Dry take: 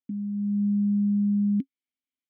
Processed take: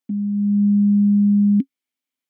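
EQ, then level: bass shelf 110 Hz -10.5 dB; dynamic bell 230 Hz, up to +4 dB, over -38 dBFS, Q 1; +7.0 dB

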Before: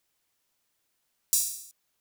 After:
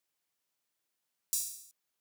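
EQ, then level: high-pass 88 Hz; bass shelf 120 Hz -4 dB; -8.0 dB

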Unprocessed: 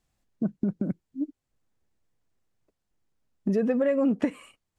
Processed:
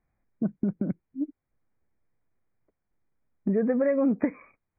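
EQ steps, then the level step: brick-wall FIR low-pass 2.5 kHz; 0.0 dB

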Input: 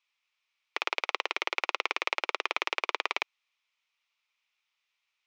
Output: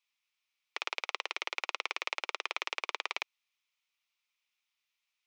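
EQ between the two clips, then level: high-pass 360 Hz 12 dB/octave; treble shelf 4.5 kHz +9 dB; -7.0 dB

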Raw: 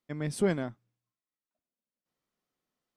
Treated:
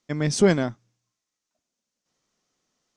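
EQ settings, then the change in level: resonant low-pass 6.3 kHz, resonance Q 3.4; +9.0 dB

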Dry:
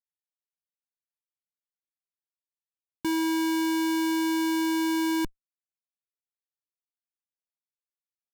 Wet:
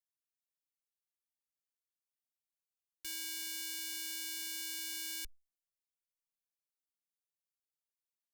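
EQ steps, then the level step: amplifier tone stack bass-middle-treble 10-0-10; treble shelf 4.4 kHz +5.5 dB; static phaser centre 370 Hz, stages 4; -5.5 dB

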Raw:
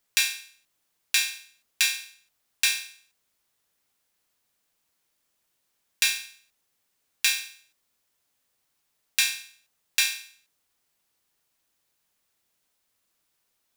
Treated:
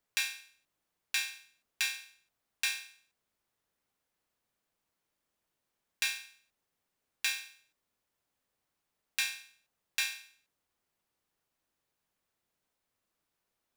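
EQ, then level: treble shelf 2.2 kHz -9.5 dB; -2.5 dB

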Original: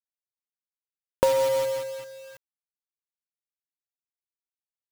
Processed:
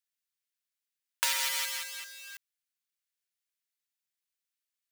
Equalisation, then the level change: inverse Chebyshev high-pass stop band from 250 Hz, stop band 80 dB; +6.5 dB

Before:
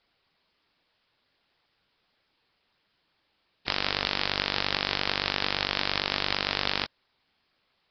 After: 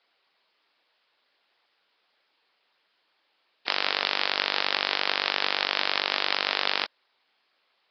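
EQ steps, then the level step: band-pass 430–5500 Hz; +3.0 dB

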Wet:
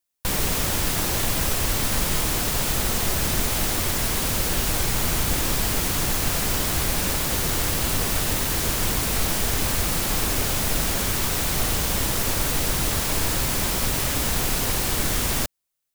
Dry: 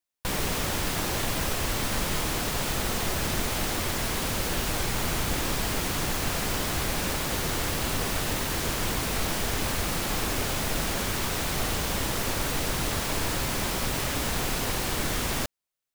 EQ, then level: bass shelf 140 Hz +4.5 dB; treble shelf 5.7 kHz +7.5 dB; +1.5 dB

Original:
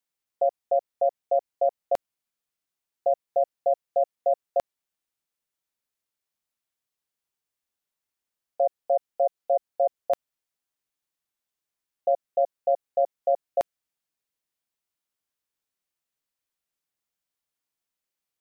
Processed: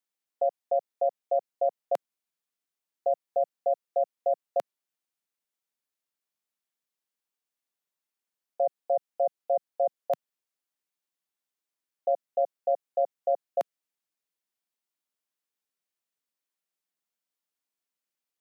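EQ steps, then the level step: high-pass 160 Hz 24 dB/octave; -3.0 dB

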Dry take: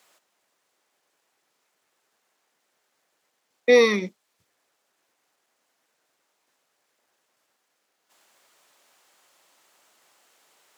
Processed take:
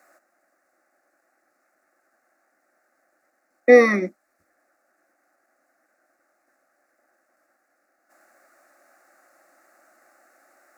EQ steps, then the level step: bass shelf 190 Hz +10.5 dB; high-order bell 740 Hz +11 dB 3 oct; static phaser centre 650 Hz, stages 8; -1.0 dB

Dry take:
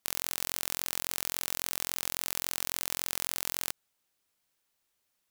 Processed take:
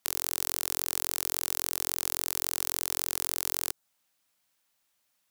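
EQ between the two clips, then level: bass shelf 85 Hz -10 dB; peaking EQ 400 Hz -13 dB 0.26 oct; dynamic bell 2.4 kHz, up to -6 dB, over -56 dBFS, Q 0.89; +3.5 dB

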